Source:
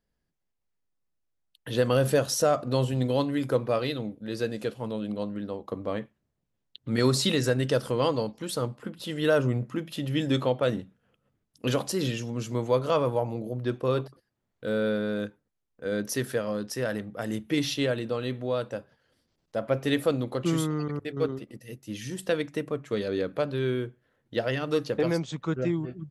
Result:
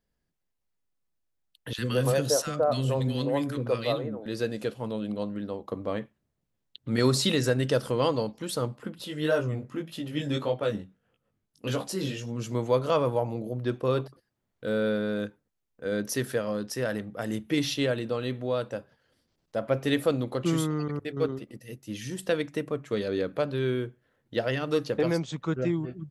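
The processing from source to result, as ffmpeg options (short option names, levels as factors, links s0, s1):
-filter_complex "[0:a]asettb=1/sr,asplit=3[s0][s1][s2];[s0]atrim=end=1.734[s3];[s1]atrim=start=1.73:end=4.26,asetpts=PTS-STARTPTS,afade=t=in:d=0.004:c=qsin,afade=t=out:st=2.526:d=0.004:c=qsin,acrossover=split=340|1300[s4][s5][s6];[s4]adelay=50[s7];[s5]adelay=170[s8];[s7][s8][s6]amix=inputs=3:normalize=0,atrim=end_sample=111573[s9];[s2]atrim=start=4.256[s10];[s3][s9]acrossfade=d=0.004:c1=hsin:c2=qsin[s11];[s11][s10]acrossfade=d=0.004:c1=qsin:c2=hsin,asplit=3[s12][s13][s14];[s12]afade=t=out:st=9.04:d=0.02[s15];[s13]flanger=delay=17:depth=4.2:speed=1.7,afade=t=in:st=9.04:d=0.02,afade=t=out:st=12.42:d=0.02[s16];[s14]afade=t=in:st=12.42:d=0.02[s17];[s15][s16][s17]amix=inputs=3:normalize=0"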